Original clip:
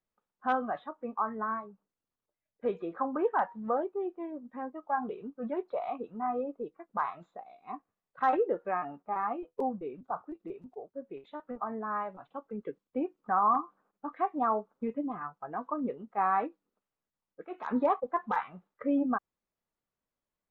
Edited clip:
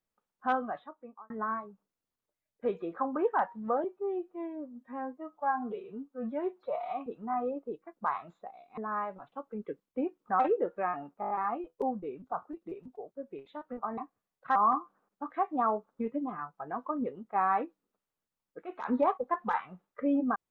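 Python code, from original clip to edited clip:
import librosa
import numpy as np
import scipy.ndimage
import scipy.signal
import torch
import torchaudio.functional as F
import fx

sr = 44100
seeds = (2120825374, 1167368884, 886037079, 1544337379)

y = fx.edit(x, sr, fx.fade_out_span(start_s=0.5, length_s=0.8),
    fx.stretch_span(start_s=3.84, length_s=2.15, factor=1.5),
    fx.swap(start_s=7.7, length_s=0.58, other_s=11.76, other_length_s=1.62),
    fx.stutter(start_s=9.09, slice_s=0.02, count=6), tone=tone)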